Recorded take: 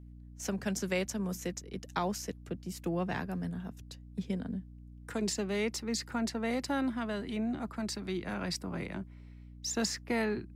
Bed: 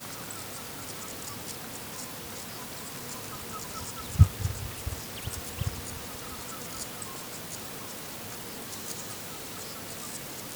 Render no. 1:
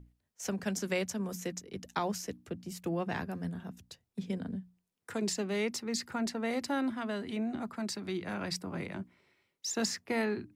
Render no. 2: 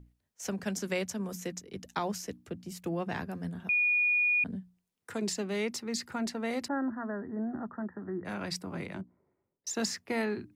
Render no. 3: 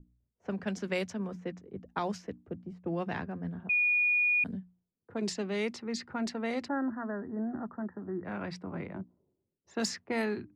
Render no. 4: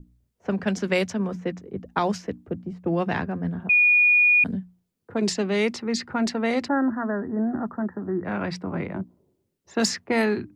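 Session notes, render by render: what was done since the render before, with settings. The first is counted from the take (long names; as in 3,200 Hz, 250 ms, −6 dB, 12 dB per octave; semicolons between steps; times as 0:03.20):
mains-hum notches 60/120/180/240/300 Hz
0:03.69–0:04.44: beep over 2,450 Hz −23.5 dBFS; 0:06.68–0:08.25: Chebyshev low-pass filter 1,900 Hz, order 10; 0:09.01–0:09.67: Bessel low-pass filter 750 Hz, order 4
mains-hum notches 60/120 Hz; low-pass that shuts in the quiet parts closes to 370 Hz, open at −26.5 dBFS
level +9.5 dB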